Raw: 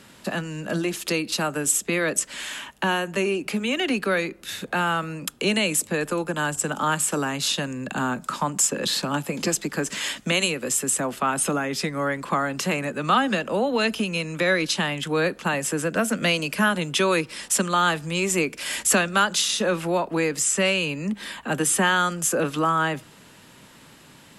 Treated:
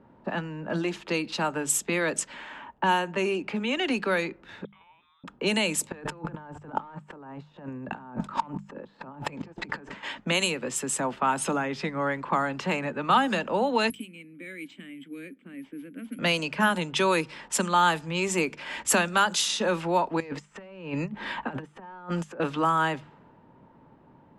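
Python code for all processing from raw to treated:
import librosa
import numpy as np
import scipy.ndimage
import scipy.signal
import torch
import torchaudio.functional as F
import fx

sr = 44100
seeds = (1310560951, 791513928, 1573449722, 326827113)

y = fx.chain(x, sr, fx.level_steps(step_db=22),
    fx.freq_invert(carrier_hz=3800), at=(4.65, 5.24))
y = fx.chain(y, sr, fx.clip_hard(threshold_db=-19.0),
    fx.over_compress(threshold_db=-38.0, ratio=-1.0),
    fx.transient(attack_db=8, sustain_db=-3), at=(5.92, 10.03))
y = fx.chain(y, sr, fx.vowel_filter(vowel='i'),
    fx.resample_bad(factor=4, down='none', up='zero_stuff'), at=(13.9, 16.19))
y = fx.chain(y, sr, fx.overload_stage(gain_db=17.0),
    fx.over_compress(threshold_db=-30.0, ratio=-0.5), at=(20.2, 22.4))
y = fx.hum_notches(y, sr, base_hz=50, count=4)
y = fx.env_lowpass(y, sr, base_hz=710.0, full_db=-17.5)
y = fx.peak_eq(y, sr, hz=900.0, db=9.0, octaves=0.22)
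y = y * 10.0 ** (-3.0 / 20.0)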